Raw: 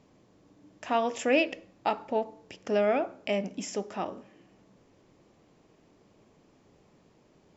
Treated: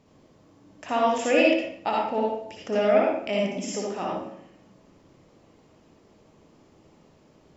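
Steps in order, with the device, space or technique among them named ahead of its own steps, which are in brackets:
bathroom (convolution reverb RT60 0.70 s, pre-delay 54 ms, DRR −3 dB)

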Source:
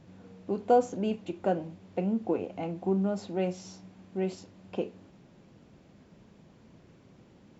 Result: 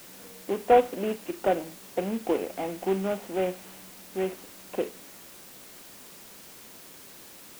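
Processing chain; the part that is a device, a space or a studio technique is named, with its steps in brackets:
army field radio (band-pass filter 310–2,800 Hz; variable-slope delta modulation 16 kbit/s; white noise bed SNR 18 dB)
level +5 dB

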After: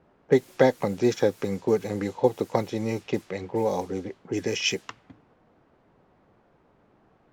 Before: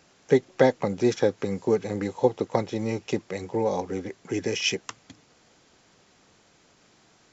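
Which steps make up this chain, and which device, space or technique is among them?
cassette deck with a dynamic noise filter (white noise bed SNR 27 dB; low-pass that shuts in the quiet parts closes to 850 Hz, open at −22.5 dBFS)
0:03.87–0:04.37: parametric band 1,900 Hz −5 dB 1.1 octaves

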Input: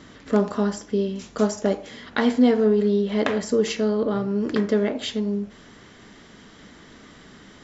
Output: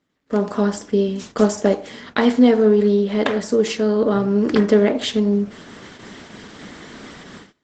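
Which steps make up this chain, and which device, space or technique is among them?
video call (high-pass filter 120 Hz 6 dB per octave; automatic gain control gain up to 12 dB; noise gate −37 dBFS, range −24 dB; level −1 dB; Opus 16 kbit/s 48,000 Hz)

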